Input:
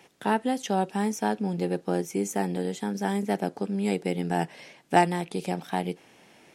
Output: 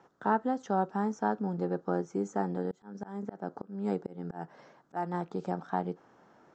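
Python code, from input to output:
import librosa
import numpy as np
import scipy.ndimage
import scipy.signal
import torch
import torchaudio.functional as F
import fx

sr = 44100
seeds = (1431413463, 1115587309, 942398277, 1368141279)

y = scipy.signal.sosfilt(scipy.signal.butter(12, 7500.0, 'lowpass', fs=sr, output='sos'), x)
y = fx.high_shelf_res(y, sr, hz=1800.0, db=-10.0, q=3.0)
y = fx.auto_swell(y, sr, attack_ms=277.0, at=(2.71, 5.14))
y = F.gain(torch.from_numpy(y), -4.5).numpy()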